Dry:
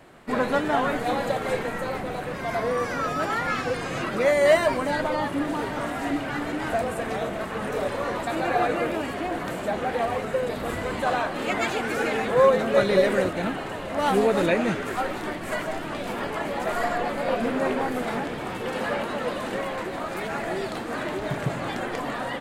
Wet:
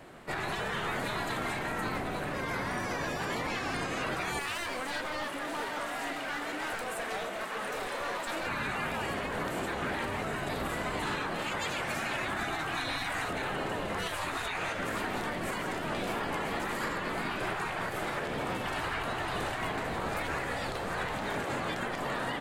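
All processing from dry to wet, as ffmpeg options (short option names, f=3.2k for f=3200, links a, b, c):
-filter_complex "[0:a]asettb=1/sr,asplit=3[a][b][c];[a]atrim=end=4.394[d];[b]atrim=start=4.39:end=8.47,asetpts=PTS-STARTPTS,afade=t=in:d=0.004:c=qsin,afade=t=out:st=4.076:d=0.004:c=qsin,highpass=f=1k:p=1,aeval=exprs='clip(val(0),-1,0.0224)':c=same[e];[c]atrim=start=8.466[f];[d][e]acrossfade=d=0.004:c1=hsin:c2=qsin[g];[g][f]acrossfade=d=0.004:c1=qsin:c2=hsin,asettb=1/sr,asplit=3[h][i][j];[h]atrim=end=18.664[k];[i]atrim=start=18.66:end=21.23,asetpts=PTS-STARTPTS,afade=t=in:d=0.004:c=qsin,afade=t=out:st=2.566:d=0.004:c=qsin,lowshelf=f=330:g=9.5,bandreject=f=50:t=h:w=6,bandreject=f=100:t=h:w=6,bandreject=f=150:t=h:w=6,bandreject=f=200:t=h:w=6,bandreject=f=250:t=h:w=6[l];[j]atrim=start=21.226[m];[k][l]acrossfade=d=0.004:c1=hsin:c2=qsin[n];[n][m]acrossfade=d=0.004:c1=qsin:c2=hsin,afftfilt=real='re*lt(hypot(re,im),0.158)':imag='im*lt(hypot(re,im),0.158)':win_size=1024:overlap=0.75,alimiter=limit=-24dB:level=0:latency=1:release=92"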